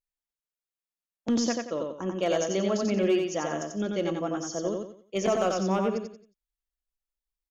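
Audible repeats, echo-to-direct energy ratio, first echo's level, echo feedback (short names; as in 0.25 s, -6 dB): 4, -3.0 dB, -3.5 dB, 32%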